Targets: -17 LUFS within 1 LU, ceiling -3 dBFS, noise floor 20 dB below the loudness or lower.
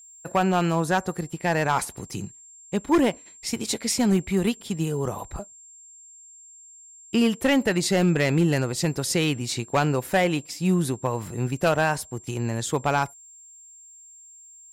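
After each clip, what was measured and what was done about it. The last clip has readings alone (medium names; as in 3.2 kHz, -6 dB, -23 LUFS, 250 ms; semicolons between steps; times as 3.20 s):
clipped samples 0.9%; clipping level -14.0 dBFS; steady tone 7.4 kHz; tone level -46 dBFS; loudness -24.5 LUFS; peak level -14.0 dBFS; loudness target -17.0 LUFS
-> clip repair -14 dBFS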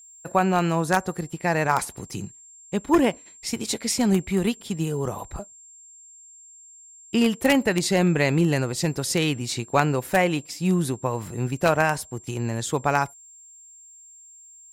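clipped samples 0.0%; steady tone 7.4 kHz; tone level -46 dBFS
-> band-stop 7.4 kHz, Q 30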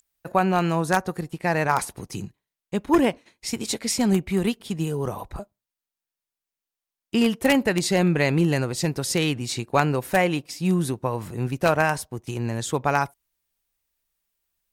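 steady tone not found; loudness -24.0 LUFS; peak level -5.0 dBFS; loudness target -17.0 LUFS
-> trim +7 dB; peak limiter -3 dBFS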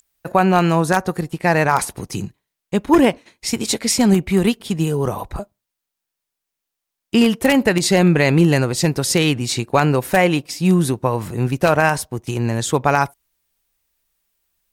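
loudness -17.5 LUFS; peak level -3.0 dBFS; noise floor -82 dBFS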